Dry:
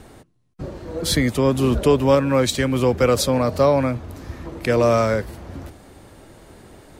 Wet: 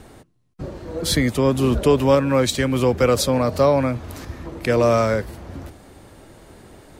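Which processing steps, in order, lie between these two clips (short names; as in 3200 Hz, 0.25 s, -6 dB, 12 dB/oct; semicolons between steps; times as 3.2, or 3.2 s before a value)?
1.97–4.25 mismatched tape noise reduction encoder only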